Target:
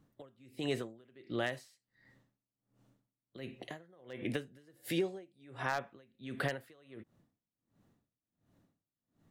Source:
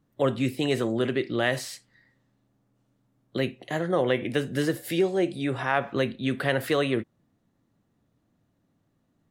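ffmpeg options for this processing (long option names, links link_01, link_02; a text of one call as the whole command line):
ffmpeg -i in.wav -af "aeval=exprs='0.251*(abs(mod(val(0)/0.251+3,4)-2)-1)':channel_layout=same,acompressor=threshold=-32dB:ratio=6,aeval=exprs='val(0)*pow(10,-30*(0.5-0.5*cos(2*PI*1.4*n/s))/20)':channel_layout=same,volume=2dB" out.wav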